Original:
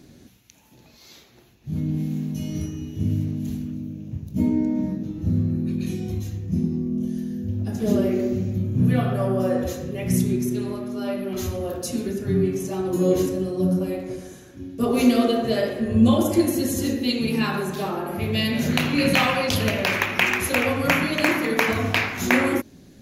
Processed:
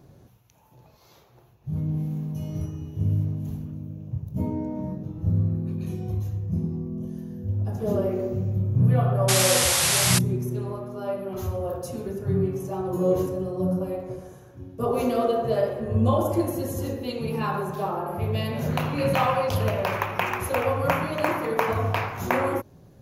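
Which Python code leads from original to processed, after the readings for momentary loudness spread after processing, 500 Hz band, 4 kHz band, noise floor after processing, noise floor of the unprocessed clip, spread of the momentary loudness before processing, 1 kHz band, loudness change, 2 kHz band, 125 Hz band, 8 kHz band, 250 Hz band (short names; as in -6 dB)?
12 LU, -1.0 dB, -1.5 dB, -54 dBFS, -51 dBFS, 10 LU, +1.5 dB, -2.5 dB, -7.0 dB, +0.5 dB, +6.0 dB, -7.5 dB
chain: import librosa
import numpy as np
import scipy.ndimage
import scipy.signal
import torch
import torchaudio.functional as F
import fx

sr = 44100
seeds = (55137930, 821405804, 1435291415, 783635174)

y = fx.graphic_eq(x, sr, hz=(125, 250, 500, 1000, 2000, 4000, 8000), db=(8, -10, 4, 7, -7, -7, -8))
y = fx.spec_paint(y, sr, seeds[0], shape='noise', start_s=9.28, length_s=0.91, low_hz=600.0, high_hz=12000.0, level_db=-19.0)
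y = y * librosa.db_to_amplitude(-3.0)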